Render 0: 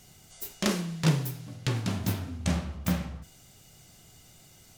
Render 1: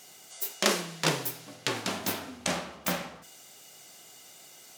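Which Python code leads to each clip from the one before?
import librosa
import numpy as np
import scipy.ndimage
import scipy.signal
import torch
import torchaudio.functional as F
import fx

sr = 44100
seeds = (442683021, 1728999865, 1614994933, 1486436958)

y = scipy.signal.sosfilt(scipy.signal.butter(2, 400.0, 'highpass', fs=sr, output='sos'), x)
y = y * 10.0 ** (5.5 / 20.0)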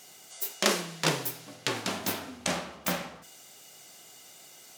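y = x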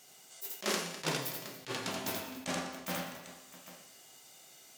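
y = fx.comb_fb(x, sr, f0_hz=130.0, decay_s=1.1, harmonics='all', damping=0.0, mix_pct=70)
y = fx.echo_multitap(y, sr, ms=(81, 201, 284, 658, 798), db=(-4.5, -18.0, -17.5, -19.5, -17.0))
y = fx.attack_slew(y, sr, db_per_s=310.0)
y = y * 10.0 ** (2.5 / 20.0)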